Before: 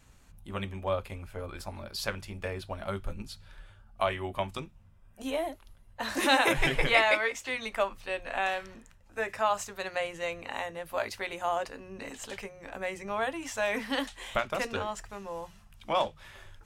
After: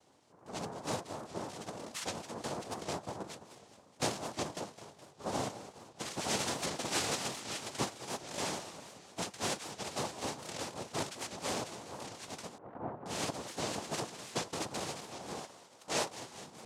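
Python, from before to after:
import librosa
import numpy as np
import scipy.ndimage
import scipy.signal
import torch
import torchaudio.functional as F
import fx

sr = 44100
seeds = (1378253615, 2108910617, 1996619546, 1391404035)

y = fx.low_shelf(x, sr, hz=130.0, db=10.5)
y = fx.echo_feedback(y, sr, ms=209, feedback_pct=60, wet_db=-13.5)
y = fx.rider(y, sr, range_db=3, speed_s=0.5)
y = fx.noise_vocoder(y, sr, seeds[0], bands=2)
y = fx.lowpass(y, sr, hz=1400.0, slope=24, at=(12.58, 13.06))
y = fx.low_shelf(y, sr, hz=330.0, db=-9.0, at=(15.4, 16.2))
y = fx.record_warp(y, sr, rpm=78.0, depth_cents=160.0)
y = F.gain(torch.from_numpy(y), -8.0).numpy()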